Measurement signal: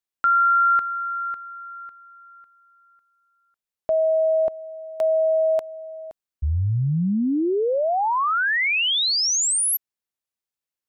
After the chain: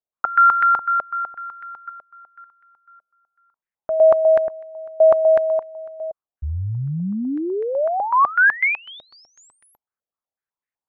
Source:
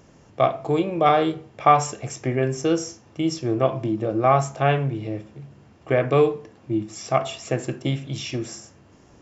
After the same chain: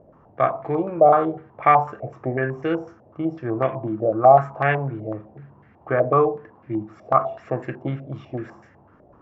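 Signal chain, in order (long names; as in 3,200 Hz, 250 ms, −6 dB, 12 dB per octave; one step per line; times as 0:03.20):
low-pass on a step sequencer 8 Hz 630–1,900 Hz
level −3 dB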